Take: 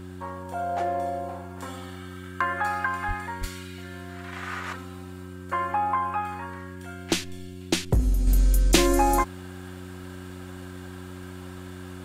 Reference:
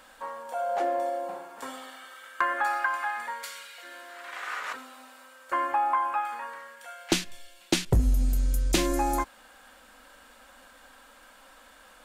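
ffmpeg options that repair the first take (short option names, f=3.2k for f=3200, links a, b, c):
-filter_complex "[0:a]bandreject=f=91.5:t=h:w=4,bandreject=f=183:t=h:w=4,bandreject=f=274.5:t=h:w=4,bandreject=f=366:t=h:w=4,asplit=3[a][b][c];[a]afade=t=out:st=3.07:d=0.02[d];[b]highpass=f=140:w=0.5412,highpass=f=140:w=1.3066,afade=t=in:st=3.07:d=0.02,afade=t=out:st=3.19:d=0.02[e];[c]afade=t=in:st=3.19:d=0.02[f];[d][e][f]amix=inputs=3:normalize=0,asplit=3[g][h][i];[g]afade=t=out:st=3.4:d=0.02[j];[h]highpass=f=140:w=0.5412,highpass=f=140:w=1.3066,afade=t=in:st=3.4:d=0.02,afade=t=out:st=3.52:d=0.02[k];[i]afade=t=in:st=3.52:d=0.02[l];[j][k][l]amix=inputs=3:normalize=0,asetnsamples=n=441:p=0,asendcmd='8.27 volume volume -5.5dB',volume=0dB"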